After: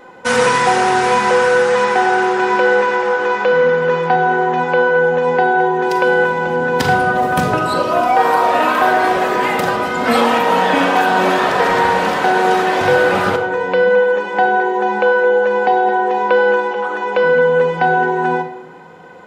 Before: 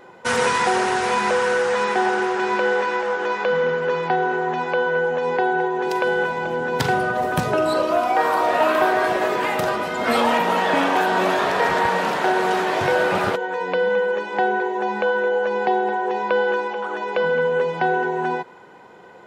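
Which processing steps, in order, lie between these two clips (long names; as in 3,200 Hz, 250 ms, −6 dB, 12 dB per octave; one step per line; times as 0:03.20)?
rectangular room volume 2,800 cubic metres, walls furnished, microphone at 2 metres
level +3.5 dB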